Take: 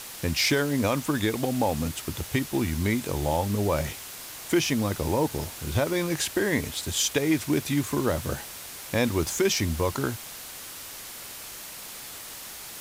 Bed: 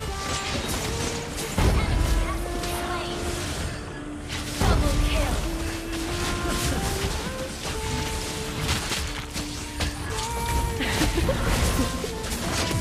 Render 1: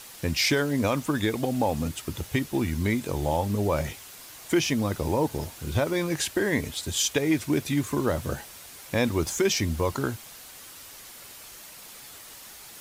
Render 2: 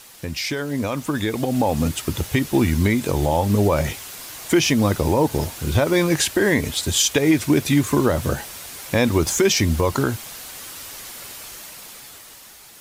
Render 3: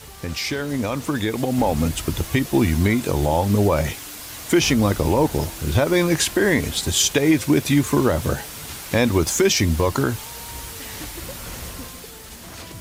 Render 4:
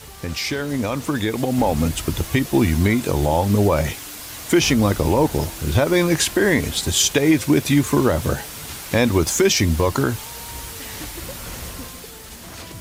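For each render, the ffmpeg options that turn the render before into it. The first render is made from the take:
-af "afftdn=nr=6:nf=-41"
-af "alimiter=limit=0.15:level=0:latency=1:release=120,dynaudnorm=f=240:g=11:m=2.82"
-filter_complex "[1:a]volume=0.237[s0];[0:a][s0]amix=inputs=2:normalize=0"
-af "volume=1.12"

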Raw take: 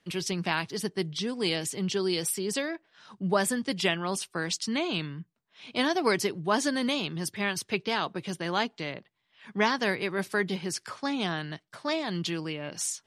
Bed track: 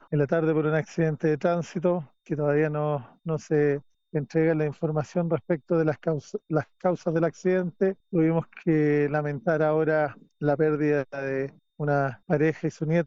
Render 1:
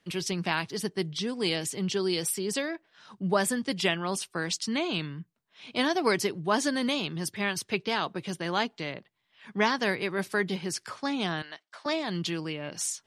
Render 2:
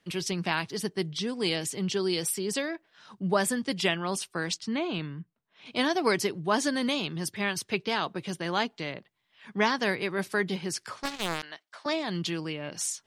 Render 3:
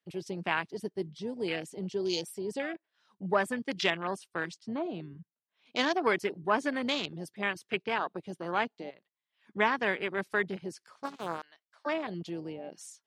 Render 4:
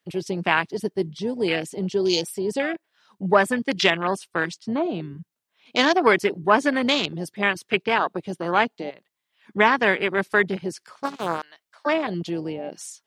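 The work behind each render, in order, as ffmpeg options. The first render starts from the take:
-filter_complex "[0:a]asettb=1/sr,asplit=3[s0][s1][s2];[s0]atrim=end=11.424[s3];[s1]atrim=start=11.42:end=11.86,asetpts=PTS-STARTPTS,afade=t=in:d=0.004:c=qsin,afade=t=out:st=0.436:d=0.004:c=qsin,highpass=630,lowpass=7400[s4];[s2]atrim=start=11.856[s5];[s3][s4]acrossfade=d=0.004:c1=hsin:c2=qsin[s6];[s6][s5]acrossfade=d=0.004:c1=qsin:c2=hsin"
-filter_complex "[0:a]asettb=1/sr,asplit=3[s0][s1][s2];[s0]atrim=end=4.544[s3];[s1]atrim=start=4.54:end=5.66,asetpts=PTS-STARTPTS,afade=t=in:d=0.004:c=qsin,afade=t=out:st=1.116:d=0.004:c=qsin,lowpass=f=2100:p=1[s4];[s2]atrim=start=5.656[s5];[s3][s4]acrossfade=d=0.004:c1=hsin:c2=qsin[s6];[s6][s5]acrossfade=d=0.004:c1=qsin:c2=hsin,asettb=1/sr,asplit=3[s7][s8][s9];[s7]atrim=end=11.034[s10];[s8]atrim=start=11.03:end=11.43,asetpts=PTS-STARTPTS,afade=t=in:d=0.004:c=qsin,afade=t=out:st=0.396:d=0.004:c=qsin,acrusher=bits=3:mix=0:aa=0.5[s11];[s9]atrim=start=11.426[s12];[s10][s11]acrossfade=d=0.004:c1=hsin:c2=qsin[s13];[s13][s12]acrossfade=d=0.004:c1=qsin:c2=hsin"
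-af "highpass=f=370:p=1,afwtdn=0.0224"
-af "volume=3.16,alimiter=limit=0.708:level=0:latency=1"

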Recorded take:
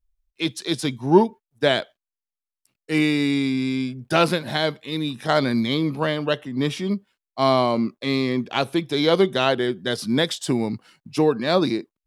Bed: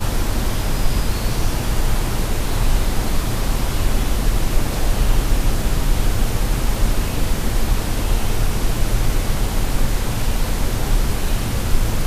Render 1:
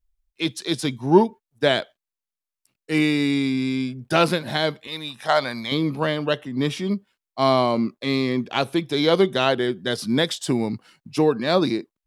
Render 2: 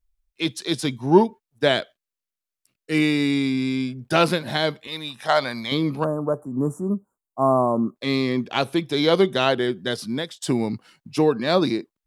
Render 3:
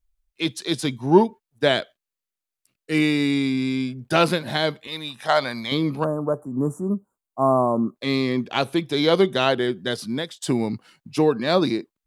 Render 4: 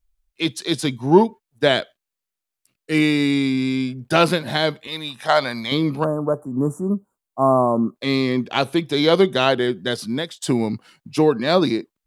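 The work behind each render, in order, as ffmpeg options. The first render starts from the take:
-filter_complex "[0:a]asettb=1/sr,asplit=3[s0][s1][s2];[s0]atrim=end=4.874[s3];[s1]atrim=start=4.87:end=5.72,asetpts=PTS-STARTPTS,afade=t=in:d=0.004:c=qsin,afade=t=out:st=0.846:d=0.004:c=qsin,lowshelf=f=490:t=q:w=1.5:g=-10[s4];[s2]atrim=start=5.716[s5];[s3][s4]acrossfade=d=0.004:c1=hsin:c2=qsin[s6];[s6][s5]acrossfade=d=0.004:c1=qsin:c2=hsin"
-filter_complex "[0:a]asettb=1/sr,asplit=3[s0][s1][s2];[s0]atrim=end=1.774[s3];[s1]atrim=start=1.77:end=3.03,asetpts=PTS-STARTPTS,afade=t=in:d=0.004:c=qsin,afade=t=out:st=1.256:d=0.004:c=qsin,equalizer=f=870:t=o:w=0.25:g=-10.5[s4];[s2]atrim=start=3.026[s5];[s3][s4]acrossfade=d=0.004:c1=hsin:c2=qsin[s6];[s6][s5]acrossfade=d=0.004:c1=qsin:c2=hsin,asettb=1/sr,asplit=3[s7][s8][s9];[s7]atrim=end=6.044[s10];[s8]atrim=start=6.04:end=7.96,asetpts=PTS-STARTPTS,afade=t=in:d=0.004:c=qsin,afade=t=out:st=1.916:d=0.004:c=qsin,asuperstop=centerf=3100:order=12:qfactor=0.53[s11];[s9]atrim=start=7.956[s12];[s10][s11]acrossfade=d=0.004:c1=hsin:c2=qsin[s13];[s13][s12]acrossfade=d=0.004:c1=qsin:c2=hsin,asplit=2[s14][s15];[s14]atrim=end=10.42,asetpts=PTS-STARTPTS,afade=t=out:st=9.83:d=0.59:silence=0.1[s16];[s15]atrim=start=10.42,asetpts=PTS-STARTPTS,afade=t=in:d=0.004:c=hsin:silence=0.1[s17];[s16][s17]concat=n=2:v=0:a=1"
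-af "bandreject=f=5400:w=25"
-af "volume=1.33,alimiter=limit=0.794:level=0:latency=1"

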